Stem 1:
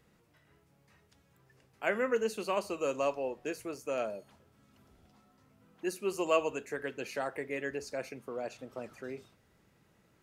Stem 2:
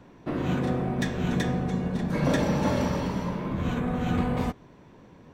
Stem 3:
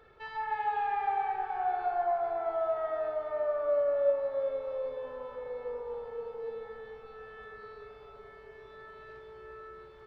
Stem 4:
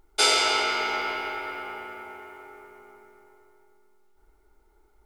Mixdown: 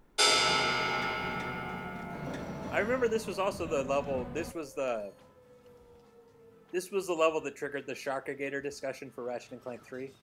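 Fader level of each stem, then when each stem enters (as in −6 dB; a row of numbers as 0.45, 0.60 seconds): +1.0, −15.5, −20.0, −4.0 decibels; 0.90, 0.00, 0.00, 0.00 seconds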